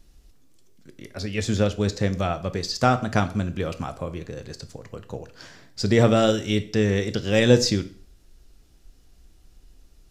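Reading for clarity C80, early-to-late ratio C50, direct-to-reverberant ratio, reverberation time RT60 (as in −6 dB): 19.5 dB, 16.0 dB, 10.5 dB, 0.45 s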